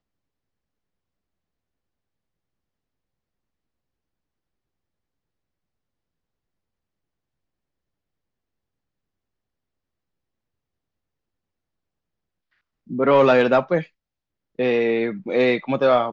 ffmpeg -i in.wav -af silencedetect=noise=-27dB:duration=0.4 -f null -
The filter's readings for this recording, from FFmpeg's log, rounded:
silence_start: 0.00
silence_end: 12.91 | silence_duration: 12.91
silence_start: 13.82
silence_end: 14.59 | silence_duration: 0.77